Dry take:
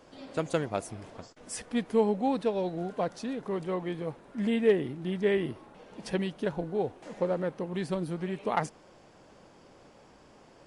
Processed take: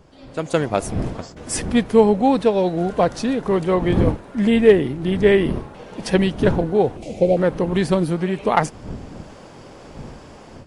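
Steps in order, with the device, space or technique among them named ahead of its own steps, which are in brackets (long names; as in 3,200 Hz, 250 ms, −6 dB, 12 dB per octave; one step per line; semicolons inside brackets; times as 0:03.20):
0:06.97–0:07.37: elliptic band-stop filter 740–2,300 Hz
smartphone video outdoors (wind on the microphone 230 Hz −43 dBFS; automatic gain control gain up to 14 dB; AAC 96 kbit/s 48,000 Hz)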